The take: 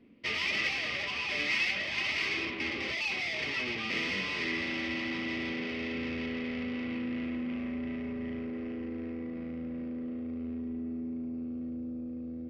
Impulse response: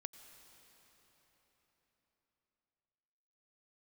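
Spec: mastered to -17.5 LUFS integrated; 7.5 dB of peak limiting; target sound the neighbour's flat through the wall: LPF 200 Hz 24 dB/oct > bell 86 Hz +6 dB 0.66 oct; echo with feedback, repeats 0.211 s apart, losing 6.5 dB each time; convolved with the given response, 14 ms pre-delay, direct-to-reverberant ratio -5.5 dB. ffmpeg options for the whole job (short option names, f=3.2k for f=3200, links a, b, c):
-filter_complex "[0:a]alimiter=level_in=0.5dB:limit=-24dB:level=0:latency=1,volume=-0.5dB,aecho=1:1:211|422|633|844|1055|1266:0.473|0.222|0.105|0.0491|0.0231|0.0109,asplit=2[a][b];[1:a]atrim=start_sample=2205,adelay=14[c];[b][c]afir=irnorm=-1:irlink=0,volume=10dB[d];[a][d]amix=inputs=2:normalize=0,lowpass=f=200:w=0.5412,lowpass=f=200:w=1.3066,equalizer=f=86:t=o:w=0.66:g=6,volume=21.5dB"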